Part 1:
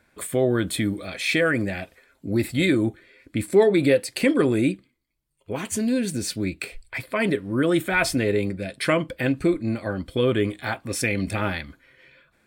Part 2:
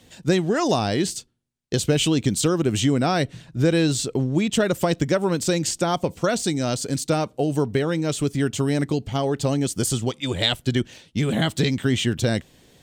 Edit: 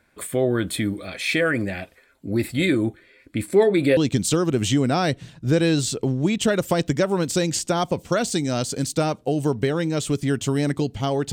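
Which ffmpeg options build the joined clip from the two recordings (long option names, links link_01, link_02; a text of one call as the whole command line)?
ffmpeg -i cue0.wav -i cue1.wav -filter_complex "[0:a]apad=whole_dur=11.32,atrim=end=11.32,atrim=end=3.972[link_01];[1:a]atrim=start=2.088:end=9.44[link_02];[link_01][link_02]acrossfade=duration=0.004:curve1=hsin:curve2=hsin" out.wav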